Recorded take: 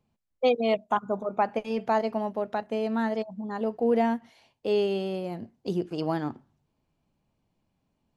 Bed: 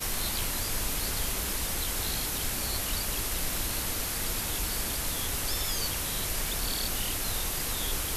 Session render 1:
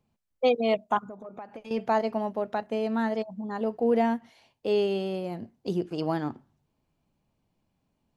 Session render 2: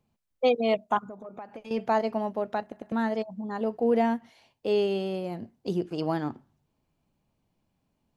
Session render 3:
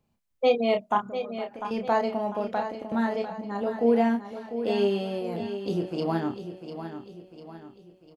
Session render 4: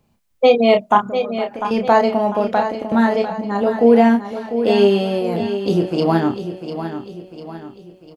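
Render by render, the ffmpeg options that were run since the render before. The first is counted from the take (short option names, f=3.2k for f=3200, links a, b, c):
-filter_complex "[0:a]asettb=1/sr,asplit=3[a][b][c];[a]atrim=end=1.004[d];[b]atrim=start=1:end=1.71,asetpts=PTS-STARTPTS,afade=t=in:d=0.004:c=qsin,afade=t=out:st=0.706:d=0.004:c=qsin,acompressor=threshold=-39dB:ratio=5:attack=3.2:release=140:knee=1:detection=peak[e];[c]atrim=start=1.706[f];[d][e]acrossfade=d=0.004:c1=hsin:c2=qsin[g];[g][f]acrossfade=d=0.004:c1=qsin:c2=hsin"
-filter_complex "[0:a]asplit=4[a][b][c][d];[a]atrim=end=2.722[e];[b]atrim=start=2.618:end=2.722[f];[c]atrim=start=2.618:end=2.722[g];[d]atrim=start=2.918[h];[e][f]acrossfade=d=0.004:c1=hsin:c2=hsin[i];[i][g]acrossfade=d=0.004:c1=hsin:c2=hsin[j];[j][h]acrossfade=d=0.004:c1=hsin:c2=hsin"
-filter_complex "[0:a]asplit=2[a][b];[b]adelay=30,volume=-5.5dB[c];[a][c]amix=inputs=2:normalize=0,aecho=1:1:698|1396|2094|2792|3490:0.316|0.142|0.064|0.0288|0.013"
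-af "volume=11dB,alimiter=limit=-2dB:level=0:latency=1"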